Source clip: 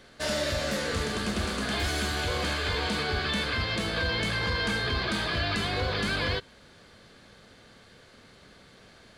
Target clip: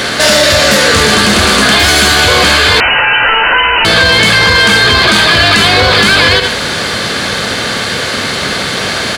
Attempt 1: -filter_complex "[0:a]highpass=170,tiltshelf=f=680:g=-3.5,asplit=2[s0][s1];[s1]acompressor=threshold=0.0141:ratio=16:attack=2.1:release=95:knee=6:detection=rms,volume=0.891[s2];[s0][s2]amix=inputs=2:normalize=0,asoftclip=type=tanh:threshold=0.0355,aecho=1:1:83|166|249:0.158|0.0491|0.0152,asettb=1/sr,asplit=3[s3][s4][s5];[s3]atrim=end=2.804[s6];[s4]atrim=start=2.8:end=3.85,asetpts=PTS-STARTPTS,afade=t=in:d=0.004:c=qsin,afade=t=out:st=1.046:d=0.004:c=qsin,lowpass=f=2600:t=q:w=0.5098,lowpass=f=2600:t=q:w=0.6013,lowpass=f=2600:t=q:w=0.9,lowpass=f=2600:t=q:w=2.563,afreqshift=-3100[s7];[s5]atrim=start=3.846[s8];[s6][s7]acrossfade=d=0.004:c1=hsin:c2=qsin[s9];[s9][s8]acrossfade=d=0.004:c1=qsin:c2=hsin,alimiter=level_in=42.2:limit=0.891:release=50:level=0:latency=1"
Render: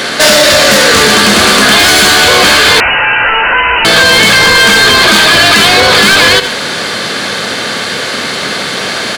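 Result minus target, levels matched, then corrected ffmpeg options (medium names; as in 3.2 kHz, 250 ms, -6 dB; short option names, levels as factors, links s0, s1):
125 Hz band -6.0 dB; saturation: distortion +8 dB
-filter_complex "[0:a]highpass=74,tiltshelf=f=680:g=-3.5,asplit=2[s0][s1];[s1]acompressor=threshold=0.0141:ratio=16:attack=2.1:release=95:knee=6:detection=rms,volume=0.891[s2];[s0][s2]amix=inputs=2:normalize=0,asoftclip=type=tanh:threshold=0.0841,aecho=1:1:83|166|249:0.158|0.0491|0.0152,asettb=1/sr,asplit=3[s3][s4][s5];[s3]atrim=end=2.804[s6];[s4]atrim=start=2.8:end=3.85,asetpts=PTS-STARTPTS,afade=t=in:d=0.004:c=qsin,afade=t=out:st=1.046:d=0.004:c=qsin,lowpass=f=2600:t=q:w=0.5098,lowpass=f=2600:t=q:w=0.6013,lowpass=f=2600:t=q:w=0.9,lowpass=f=2600:t=q:w=2.563,afreqshift=-3100[s7];[s5]atrim=start=3.846[s8];[s6][s7]acrossfade=d=0.004:c1=hsin:c2=qsin[s9];[s9][s8]acrossfade=d=0.004:c1=qsin:c2=hsin,alimiter=level_in=42.2:limit=0.891:release=50:level=0:latency=1"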